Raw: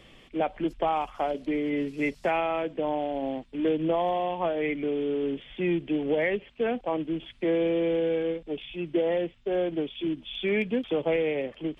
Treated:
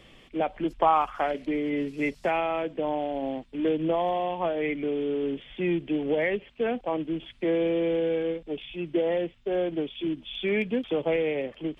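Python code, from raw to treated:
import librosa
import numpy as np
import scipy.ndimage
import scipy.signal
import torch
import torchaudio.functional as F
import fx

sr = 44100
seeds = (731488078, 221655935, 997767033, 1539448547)

y = fx.peak_eq(x, sr, hz=fx.line((0.77, 920.0), (1.44, 2200.0)), db=12.0, octaves=0.73, at=(0.77, 1.44), fade=0.02)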